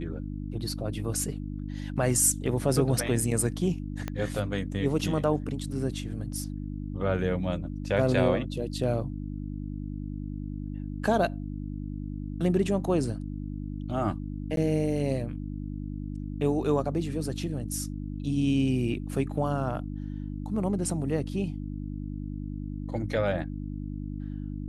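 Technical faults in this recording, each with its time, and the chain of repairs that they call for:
hum 50 Hz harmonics 6 -35 dBFS
4.08 s: pop -18 dBFS
14.56–14.57 s: dropout 12 ms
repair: de-click; de-hum 50 Hz, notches 6; interpolate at 14.56 s, 12 ms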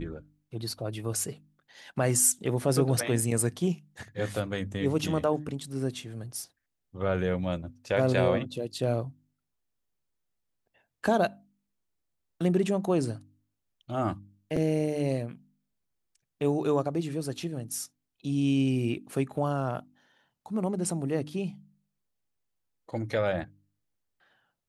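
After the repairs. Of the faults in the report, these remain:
4.08 s: pop

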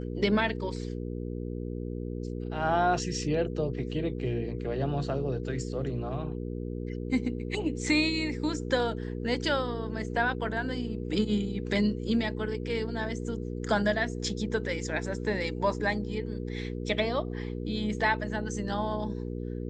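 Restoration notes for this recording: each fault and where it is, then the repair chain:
hum 60 Hz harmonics 8 -35 dBFS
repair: de-hum 60 Hz, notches 8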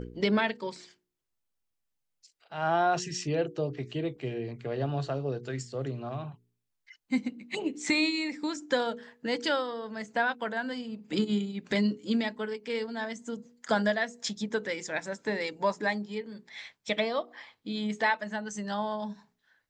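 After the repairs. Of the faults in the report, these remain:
nothing left

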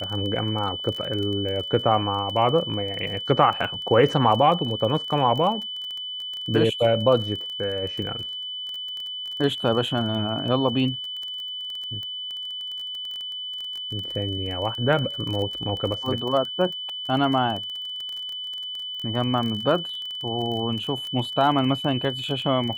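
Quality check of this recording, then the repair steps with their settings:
crackle 21 per s -29 dBFS
whine 3 kHz -30 dBFS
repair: de-click; band-stop 3 kHz, Q 30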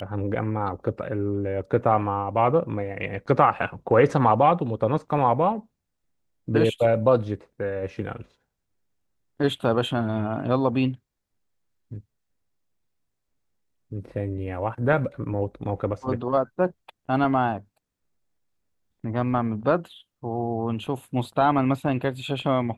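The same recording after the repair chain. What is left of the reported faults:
nothing left

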